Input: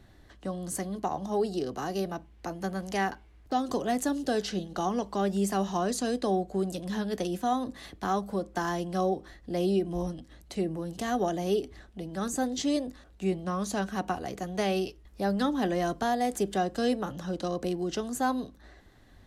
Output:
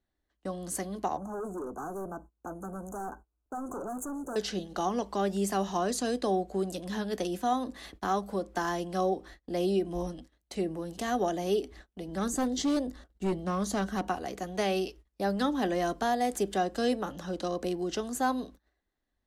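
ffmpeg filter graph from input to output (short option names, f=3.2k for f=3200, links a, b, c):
-filter_complex "[0:a]asettb=1/sr,asplit=3[a][b][c];[a]atrim=end=1.174[d];[b]atrim=start=1.17:end=4.36,asetpts=PTS-STARTPTS,afade=t=in:d=0.004:c=qsin,afade=t=out:st=3.186:d=0.004:c=qsin,asoftclip=type=hard:threshold=-33.5dB,asuperstop=centerf=3200:order=20:qfactor=0.65[e];[c]atrim=start=4.356[f];[d][e]acrossfade=d=0.004:c1=hsin:c2=qsin[g];[g][f]acrossfade=d=0.004:c1=qsin:c2=hsin,asettb=1/sr,asplit=3[h][i][j];[h]atrim=end=12.084[k];[i]atrim=start=12.08:end=14.08,asetpts=PTS-STARTPTS,afade=t=in:d=0.004:c=qsin,afade=t=out:st=1.996:d=0.004:c=qsin,lowshelf=f=330:g=5.5,bandreject=f=2.5k:w=6.9,volume=22.5dB,asoftclip=hard,volume=-22.5dB[l];[j]atrim=start=14.076[m];[k][l]acrossfade=d=0.004:c1=hsin:c2=qsin[n];[n][m]acrossfade=d=0.004:c1=qsin:c2=hsin,agate=range=-25dB:threshold=-47dB:ratio=16:detection=peak,equalizer=f=120:w=1.7:g=-11.5"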